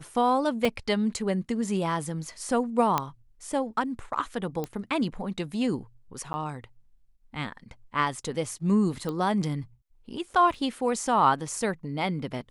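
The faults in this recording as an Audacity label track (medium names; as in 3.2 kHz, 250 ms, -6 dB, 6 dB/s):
0.650000	0.650000	dropout 3 ms
2.980000	2.980000	pop -10 dBFS
4.640000	4.640000	pop -18 dBFS
6.330000	6.340000	dropout 10 ms
9.090000	9.090000	pop -20 dBFS
10.540000	10.540000	dropout 2.2 ms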